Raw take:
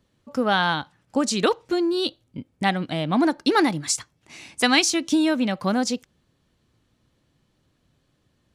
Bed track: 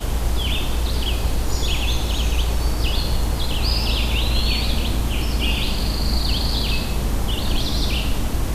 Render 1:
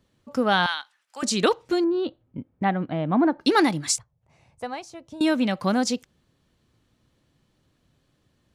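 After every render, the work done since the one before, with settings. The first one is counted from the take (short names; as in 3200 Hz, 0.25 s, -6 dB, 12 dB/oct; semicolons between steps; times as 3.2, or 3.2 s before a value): 0.66–1.23 HPF 1400 Hz; 1.84–3.41 LPF 1500 Hz; 3.98–5.21 EQ curve 130 Hz 0 dB, 300 Hz -22 dB, 520 Hz -6 dB, 880 Hz -9 dB, 1500 Hz -18 dB, 3200 Hz -25 dB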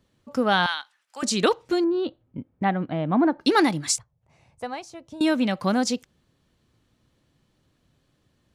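nothing audible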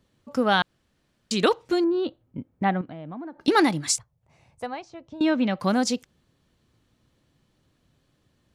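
0.62–1.31 room tone; 2.81–3.48 compressor 5:1, threshold -36 dBFS; 4.66–5.6 air absorption 150 m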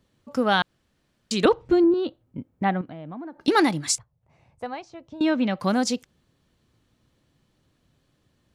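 1.45–1.94 RIAA curve playback; 3.95–4.66 high shelf 3600 Hz -10.5 dB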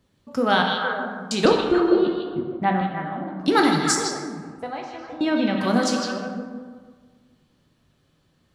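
on a send: delay with a stepping band-pass 0.155 s, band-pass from 3700 Hz, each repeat -1.4 oct, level -1.5 dB; on the sum: plate-style reverb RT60 1.6 s, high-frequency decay 0.5×, DRR 1.5 dB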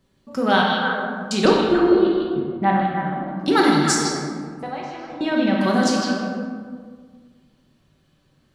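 shoebox room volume 730 m³, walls mixed, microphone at 1.1 m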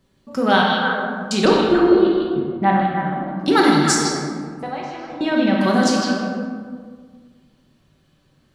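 gain +2 dB; limiter -3 dBFS, peak gain reduction 2 dB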